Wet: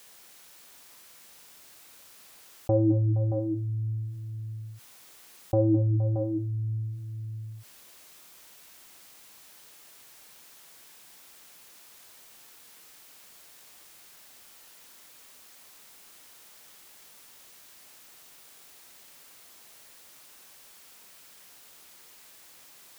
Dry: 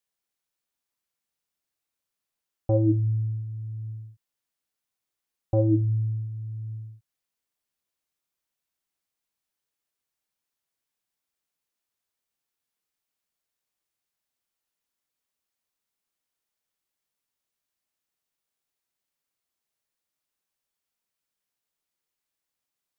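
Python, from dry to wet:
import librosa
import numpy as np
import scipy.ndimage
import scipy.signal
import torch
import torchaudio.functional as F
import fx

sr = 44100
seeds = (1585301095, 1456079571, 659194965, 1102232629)

y = fx.low_shelf(x, sr, hz=150.0, db=-7.5)
y = fx.echo_multitap(y, sr, ms=(210, 468, 625), db=(-16.0, -16.5, -13.5))
y = fx.env_flatten(y, sr, amount_pct=50)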